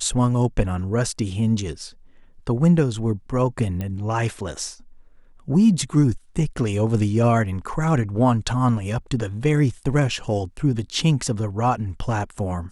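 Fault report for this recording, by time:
3.81 s: pop -16 dBFS

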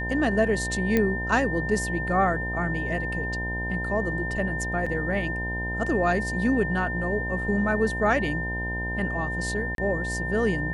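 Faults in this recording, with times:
buzz 60 Hz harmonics 17 -32 dBFS
whine 1.8 kHz -30 dBFS
0.97 s: pop -10 dBFS
4.86 s: dropout 4.8 ms
9.75–9.78 s: dropout 32 ms

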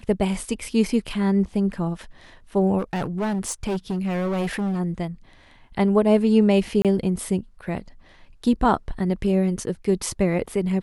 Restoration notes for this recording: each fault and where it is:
2.78–4.80 s: clipped -21.5 dBFS
6.82–6.85 s: dropout 27 ms

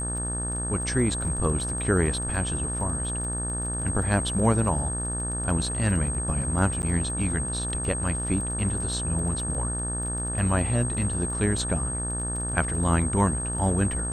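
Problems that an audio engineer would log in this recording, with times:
buzz 60 Hz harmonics 30 -32 dBFS
crackle 23 per s -34 dBFS
whine 8.4 kHz -30 dBFS
6.82–6.83 s: dropout 9.4 ms

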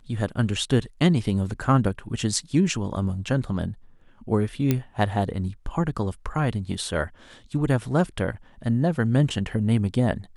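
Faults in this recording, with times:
4.71 s: pop -8 dBFS

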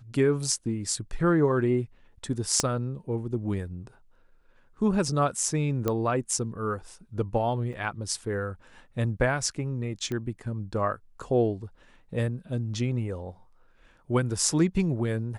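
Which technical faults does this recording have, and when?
2.60 s: pop -9 dBFS
5.88 s: pop -13 dBFS
7.73–7.74 s: dropout 5.5 ms
10.12 s: pop -20 dBFS

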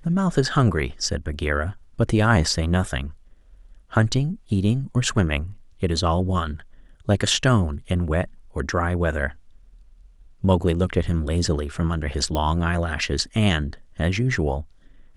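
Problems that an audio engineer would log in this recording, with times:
12.35 s: pop -12 dBFS

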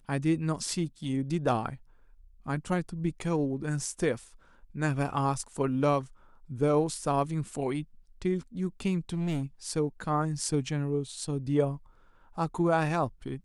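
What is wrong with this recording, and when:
9.09–9.44 s: clipped -26.5 dBFS

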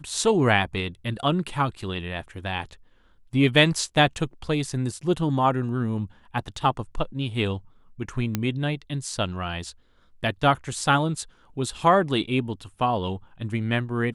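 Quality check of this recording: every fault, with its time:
8.35 s: pop -10 dBFS

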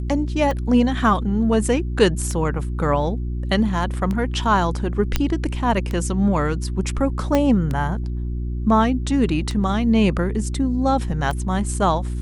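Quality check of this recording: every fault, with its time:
hum 60 Hz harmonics 6 -25 dBFS
tick 33 1/3 rpm -14 dBFS
5.16 s: pop -5 dBFS
7.35 s: pop -6 dBFS

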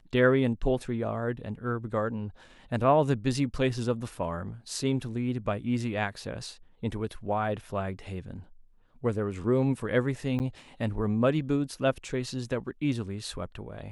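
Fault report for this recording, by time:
4.15 s: dropout 2 ms
10.39–10.40 s: dropout 9.3 ms

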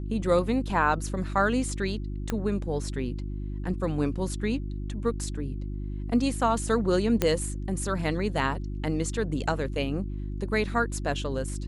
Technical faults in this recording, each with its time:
hum 50 Hz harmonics 7 -33 dBFS
2.30 s: pop -14 dBFS
7.22 s: pop -9 dBFS

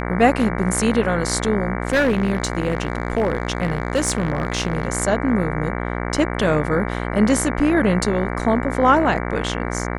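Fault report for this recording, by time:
buzz 60 Hz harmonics 38 -25 dBFS
1.87–4.88 s: clipped -13 dBFS

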